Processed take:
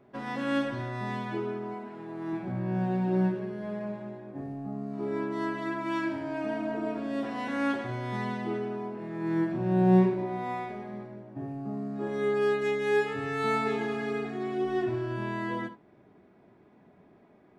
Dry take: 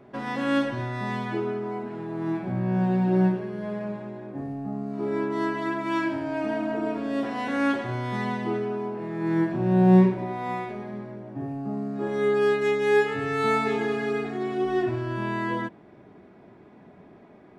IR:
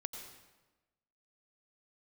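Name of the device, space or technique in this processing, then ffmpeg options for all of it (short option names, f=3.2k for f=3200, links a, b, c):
keyed gated reverb: -filter_complex "[0:a]asettb=1/sr,asplit=3[a][b][c];[a]atrim=end=1.744[d];[b]atrim=start=1.74:end=2.33,asetpts=PTS-STARTPTS,afade=t=in:d=0.004:c=qsin,afade=t=out:st=0.586:d=0.004:c=qsin,lowshelf=f=190:g=-9[e];[c]atrim=start=2.326[f];[d][e]acrossfade=d=0.004:c1=hsin:c2=qsin[g];[g][f]acrossfade=d=0.004:c1=qsin:c2=hsin,asplit=3[h][i][j];[1:a]atrim=start_sample=2205[k];[i][k]afir=irnorm=-1:irlink=0[l];[j]apad=whole_len=775447[m];[l][m]sidechaingate=range=-33dB:threshold=-37dB:ratio=16:detection=peak,volume=-3.5dB[n];[h][n]amix=inputs=2:normalize=0,volume=-8dB"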